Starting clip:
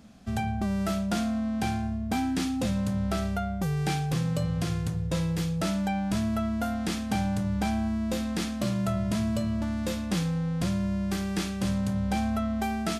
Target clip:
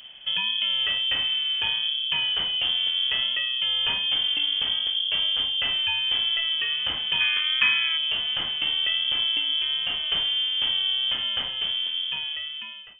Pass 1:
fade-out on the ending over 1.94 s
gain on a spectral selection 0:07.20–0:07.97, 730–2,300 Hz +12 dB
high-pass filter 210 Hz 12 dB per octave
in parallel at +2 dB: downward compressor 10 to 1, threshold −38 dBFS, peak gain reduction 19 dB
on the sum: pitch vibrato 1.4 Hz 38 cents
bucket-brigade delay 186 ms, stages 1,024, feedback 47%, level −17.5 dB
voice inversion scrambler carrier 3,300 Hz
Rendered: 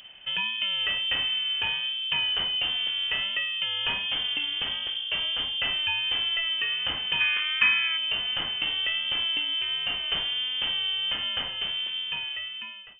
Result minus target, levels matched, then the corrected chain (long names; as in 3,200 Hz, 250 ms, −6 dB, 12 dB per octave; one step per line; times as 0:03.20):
250 Hz band +3.5 dB
fade-out on the ending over 1.94 s
gain on a spectral selection 0:07.20–0:07.97, 730–2,300 Hz +12 dB
in parallel at +2 dB: downward compressor 10 to 1, threshold −38 dBFS, peak gain reduction 19.5 dB
on the sum: pitch vibrato 1.4 Hz 38 cents
bucket-brigade delay 186 ms, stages 1,024, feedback 47%, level −17.5 dB
voice inversion scrambler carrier 3,300 Hz